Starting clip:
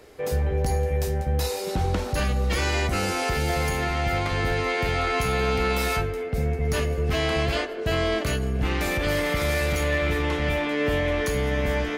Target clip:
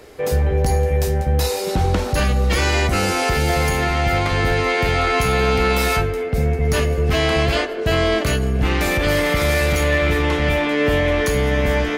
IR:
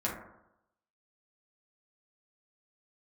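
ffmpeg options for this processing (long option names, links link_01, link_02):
-af "acontrast=68"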